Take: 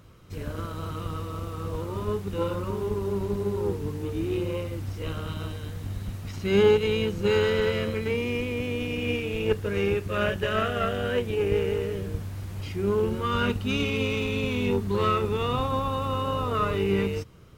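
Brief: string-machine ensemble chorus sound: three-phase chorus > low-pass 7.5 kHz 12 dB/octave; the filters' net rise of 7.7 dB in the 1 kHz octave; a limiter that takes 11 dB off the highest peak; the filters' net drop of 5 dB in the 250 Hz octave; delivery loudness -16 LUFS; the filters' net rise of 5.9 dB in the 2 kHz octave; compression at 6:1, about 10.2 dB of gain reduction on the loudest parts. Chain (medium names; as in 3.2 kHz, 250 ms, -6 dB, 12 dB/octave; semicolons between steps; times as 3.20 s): peaking EQ 250 Hz -7.5 dB; peaking EQ 1 kHz +8 dB; peaking EQ 2 kHz +5.5 dB; compression 6:1, threshold -26 dBFS; peak limiter -26 dBFS; three-phase chorus; low-pass 7.5 kHz 12 dB/octave; trim +21.5 dB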